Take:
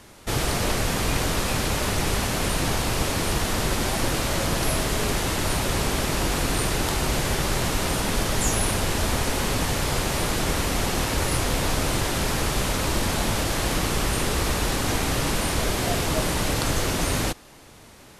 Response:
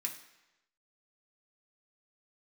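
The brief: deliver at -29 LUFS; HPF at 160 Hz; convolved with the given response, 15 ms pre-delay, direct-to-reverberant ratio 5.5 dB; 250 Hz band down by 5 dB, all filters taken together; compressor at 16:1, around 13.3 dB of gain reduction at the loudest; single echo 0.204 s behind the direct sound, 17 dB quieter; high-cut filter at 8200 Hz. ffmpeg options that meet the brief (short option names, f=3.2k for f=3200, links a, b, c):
-filter_complex "[0:a]highpass=160,lowpass=8.2k,equalizer=f=250:t=o:g=-5.5,acompressor=threshold=-36dB:ratio=16,aecho=1:1:204:0.141,asplit=2[a][b];[1:a]atrim=start_sample=2205,adelay=15[c];[b][c]afir=irnorm=-1:irlink=0,volume=-5.5dB[d];[a][d]amix=inputs=2:normalize=0,volume=8.5dB"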